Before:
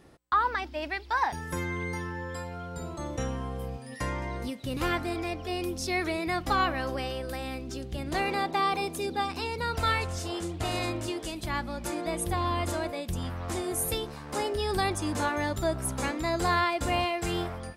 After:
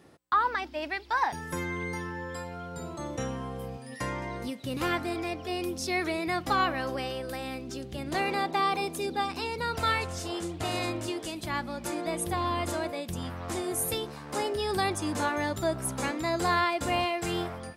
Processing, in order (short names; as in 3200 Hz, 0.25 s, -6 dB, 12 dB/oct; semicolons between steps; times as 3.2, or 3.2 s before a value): HPF 99 Hz 12 dB/oct